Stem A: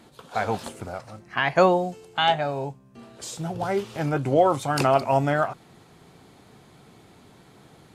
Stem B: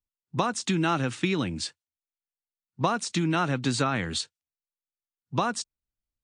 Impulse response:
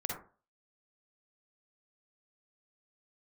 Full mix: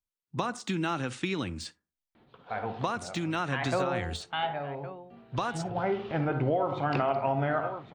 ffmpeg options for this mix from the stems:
-filter_complex "[0:a]lowpass=frequency=3400:width=0.5412,lowpass=frequency=3400:width=1.3066,adelay=2150,volume=-5dB,afade=type=in:start_time=5.22:duration=0.78:silence=0.421697,asplit=3[link_01][link_02][link_03];[link_02]volume=-5.5dB[link_04];[link_03]volume=-13.5dB[link_05];[1:a]deesser=0.75,asubboost=boost=11:cutoff=57,volume=-4dB,asplit=2[link_06][link_07];[link_07]volume=-20dB[link_08];[2:a]atrim=start_sample=2205[link_09];[link_04][link_08]amix=inputs=2:normalize=0[link_10];[link_10][link_09]afir=irnorm=-1:irlink=0[link_11];[link_05]aecho=0:1:1113:1[link_12];[link_01][link_06][link_11][link_12]amix=inputs=4:normalize=0,acompressor=threshold=-24dB:ratio=6"

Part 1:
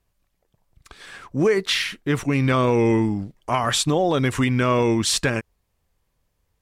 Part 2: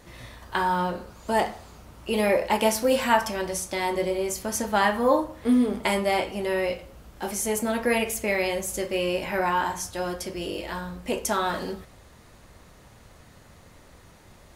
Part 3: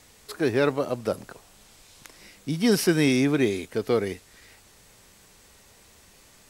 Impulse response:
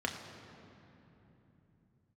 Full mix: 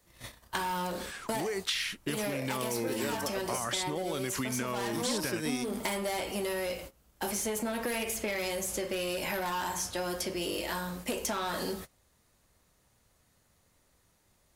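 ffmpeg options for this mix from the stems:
-filter_complex "[0:a]volume=-4.5dB,asplit=2[link_01][link_02];[1:a]agate=range=-20dB:threshold=-41dB:ratio=16:detection=peak,asoftclip=type=tanh:threshold=-22.5dB,volume=1dB[link_03];[2:a]adelay=2450,volume=-7.5dB[link_04];[link_02]apad=whole_len=394628[link_05];[link_04][link_05]sidechaingate=range=-33dB:threshold=-58dB:ratio=16:detection=peak[link_06];[link_01][link_03]amix=inputs=2:normalize=0,acompressor=threshold=-25dB:ratio=6,volume=0dB[link_07];[link_06][link_07]amix=inputs=2:normalize=0,highshelf=frequency=5100:gain=12,acrossover=split=160|4700[link_08][link_09][link_10];[link_08]acompressor=threshold=-50dB:ratio=4[link_11];[link_09]acompressor=threshold=-31dB:ratio=4[link_12];[link_10]acompressor=threshold=-40dB:ratio=4[link_13];[link_11][link_12][link_13]amix=inputs=3:normalize=0"

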